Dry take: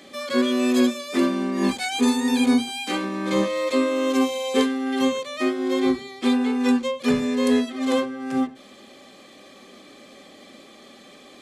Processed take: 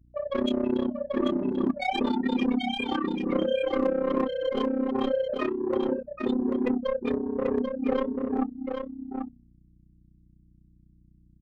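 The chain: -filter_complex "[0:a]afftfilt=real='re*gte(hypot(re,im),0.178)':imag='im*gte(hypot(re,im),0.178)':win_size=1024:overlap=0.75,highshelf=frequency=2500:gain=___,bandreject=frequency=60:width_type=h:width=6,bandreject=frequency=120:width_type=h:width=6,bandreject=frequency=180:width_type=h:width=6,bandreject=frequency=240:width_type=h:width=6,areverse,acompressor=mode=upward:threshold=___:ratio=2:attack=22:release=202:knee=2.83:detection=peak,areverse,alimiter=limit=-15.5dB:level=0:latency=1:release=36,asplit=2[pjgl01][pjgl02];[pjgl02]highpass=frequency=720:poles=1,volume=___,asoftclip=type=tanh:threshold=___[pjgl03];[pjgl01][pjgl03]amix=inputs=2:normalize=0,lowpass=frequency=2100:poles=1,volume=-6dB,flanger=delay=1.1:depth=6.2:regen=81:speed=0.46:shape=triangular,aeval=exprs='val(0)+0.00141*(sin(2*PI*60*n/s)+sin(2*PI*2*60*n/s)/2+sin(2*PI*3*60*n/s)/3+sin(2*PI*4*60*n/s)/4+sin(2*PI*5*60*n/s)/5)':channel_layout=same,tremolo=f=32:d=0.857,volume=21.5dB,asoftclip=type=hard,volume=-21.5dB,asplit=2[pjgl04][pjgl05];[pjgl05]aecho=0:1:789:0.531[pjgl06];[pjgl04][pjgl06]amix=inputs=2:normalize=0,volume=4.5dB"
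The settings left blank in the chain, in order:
-4, -26dB, 15dB, -15.5dB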